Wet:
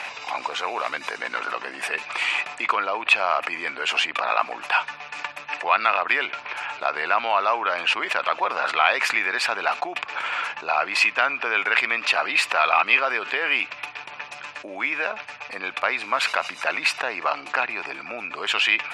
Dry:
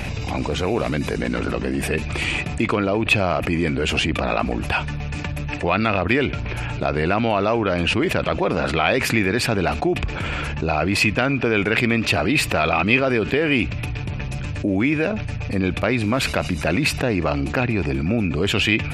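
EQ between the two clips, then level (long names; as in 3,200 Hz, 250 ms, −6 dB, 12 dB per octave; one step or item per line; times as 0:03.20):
high-pass with resonance 1,000 Hz, resonance Q 1.8
high-frequency loss of the air 54 metres
0.0 dB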